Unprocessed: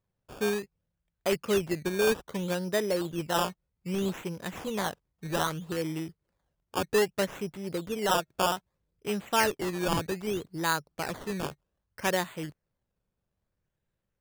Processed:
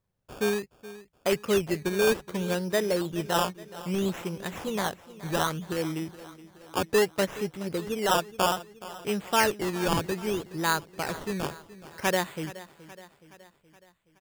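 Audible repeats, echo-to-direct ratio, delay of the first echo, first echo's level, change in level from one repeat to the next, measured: 4, -15.5 dB, 0.422 s, -17.0 dB, -5.0 dB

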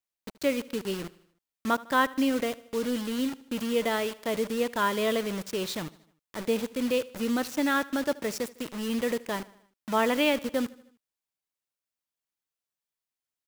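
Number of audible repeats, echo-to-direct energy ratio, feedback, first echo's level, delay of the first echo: 3, -19.0 dB, 54%, -20.5 dB, 77 ms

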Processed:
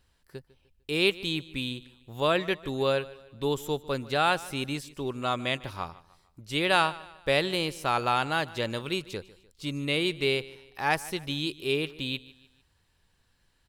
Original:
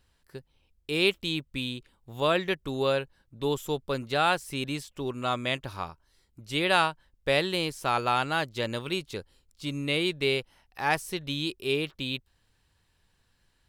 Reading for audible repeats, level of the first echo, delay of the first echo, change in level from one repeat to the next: 3, -19.5 dB, 0.15 s, -7.5 dB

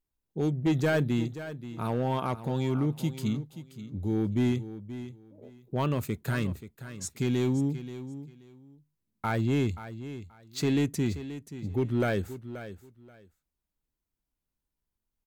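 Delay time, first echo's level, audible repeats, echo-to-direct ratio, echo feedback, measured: 0.53 s, -13.0 dB, 2, -13.0 dB, 20%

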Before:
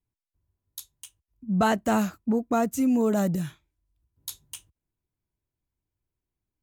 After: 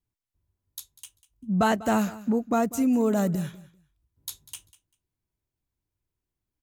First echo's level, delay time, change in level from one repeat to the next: -18.5 dB, 0.196 s, -15.0 dB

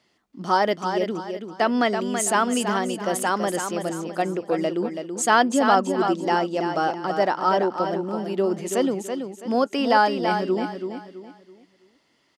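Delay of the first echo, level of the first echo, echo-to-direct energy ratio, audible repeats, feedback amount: 0.33 s, -7.0 dB, -6.5 dB, 3, 34%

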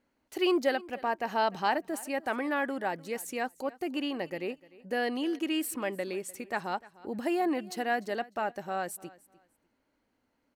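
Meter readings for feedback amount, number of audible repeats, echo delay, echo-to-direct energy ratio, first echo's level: 22%, 2, 0.3 s, -21.0 dB, -21.0 dB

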